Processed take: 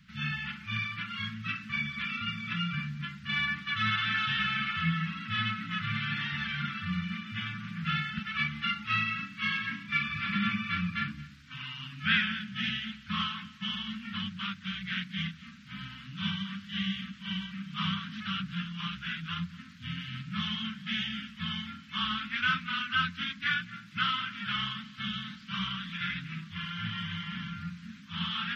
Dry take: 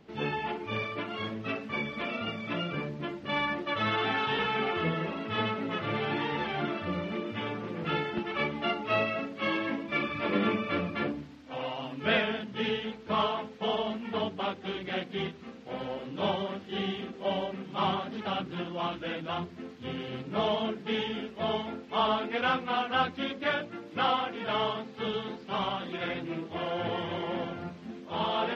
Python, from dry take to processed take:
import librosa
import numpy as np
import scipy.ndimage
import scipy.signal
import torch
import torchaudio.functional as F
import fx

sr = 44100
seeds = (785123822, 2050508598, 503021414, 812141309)

p1 = scipy.signal.sosfilt(scipy.signal.ellip(3, 1.0, 50, [190.0, 1400.0], 'bandstop', fs=sr, output='sos'), x)
p2 = p1 + fx.echo_single(p1, sr, ms=226, db=-21.0, dry=0)
y = p2 * 10.0 ** (3.5 / 20.0)